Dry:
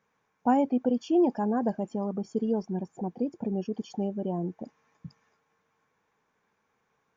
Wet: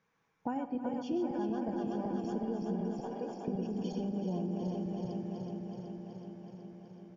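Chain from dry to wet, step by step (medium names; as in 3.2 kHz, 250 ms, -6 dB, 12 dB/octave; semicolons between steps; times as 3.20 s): backward echo that repeats 187 ms, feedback 83%, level -5.5 dB; 3.00–3.48 s: high-pass 490 Hz 12 dB/octave; delay 312 ms -18 dB; compression 6:1, threshold -29 dBFS, peak gain reduction 11.5 dB; low-pass 6.4 kHz 24 dB/octave; peaking EQ 720 Hz -4 dB 2.2 oct; echo that smears into a reverb 911 ms, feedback 44%, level -16 dB; simulated room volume 2800 m³, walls mixed, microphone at 0.69 m; trim -1 dB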